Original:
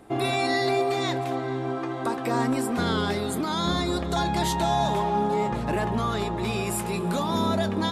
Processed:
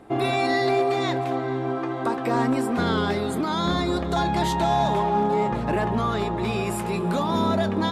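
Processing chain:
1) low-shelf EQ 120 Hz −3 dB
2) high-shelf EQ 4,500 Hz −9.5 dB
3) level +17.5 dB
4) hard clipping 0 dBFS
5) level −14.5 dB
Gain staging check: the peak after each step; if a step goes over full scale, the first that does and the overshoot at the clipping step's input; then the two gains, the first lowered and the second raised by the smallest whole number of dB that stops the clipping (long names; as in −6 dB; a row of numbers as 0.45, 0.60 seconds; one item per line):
−13.5, −14.0, +3.5, 0.0, −14.5 dBFS
step 3, 3.5 dB
step 3 +13.5 dB, step 5 −10.5 dB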